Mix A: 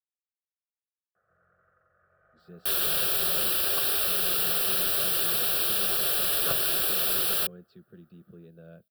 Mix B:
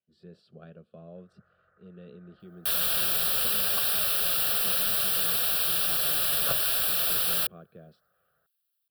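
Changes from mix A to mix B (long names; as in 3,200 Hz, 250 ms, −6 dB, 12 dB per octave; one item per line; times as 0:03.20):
speech: entry −2.25 s
first sound: add parametric band 360 Hz −13 dB 0.56 octaves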